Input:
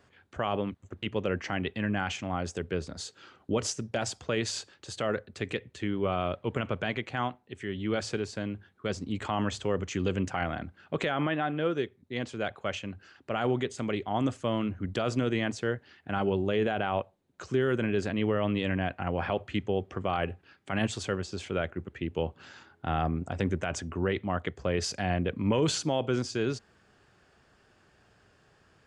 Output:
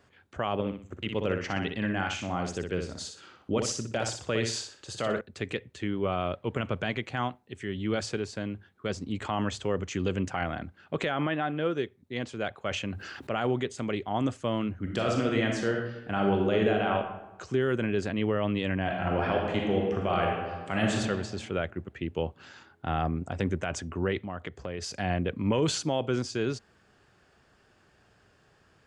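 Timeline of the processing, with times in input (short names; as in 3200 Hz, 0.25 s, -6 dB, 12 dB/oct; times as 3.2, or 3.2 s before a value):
0.53–5.21 feedback echo 61 ms, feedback 31%, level -5.5 dB
6.6–8.06 tone controls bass +2 dB, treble +3 dB
12.71–13.4 fast leveller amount 50%
14.81–16.95 reverb throw, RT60 0.96 s, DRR 0.5 dB
18.81–20.97 reverb throw, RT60 1.5 s, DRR -1 dB
24.22–24.94 compressor 2.5:1, threshold -34 dBFS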